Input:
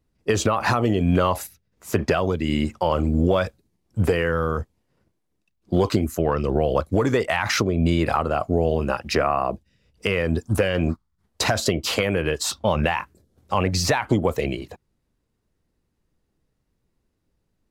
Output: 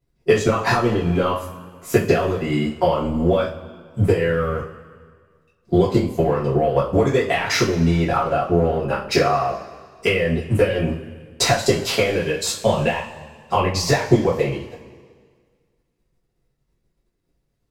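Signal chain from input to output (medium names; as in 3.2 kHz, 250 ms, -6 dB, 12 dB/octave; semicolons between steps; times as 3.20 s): transient shaper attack +6 dB, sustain -11 dB; two-slope reverb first 0.33 s, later 1.8 s, from -18 dB, DRR -7.5 dB; trim -7 dB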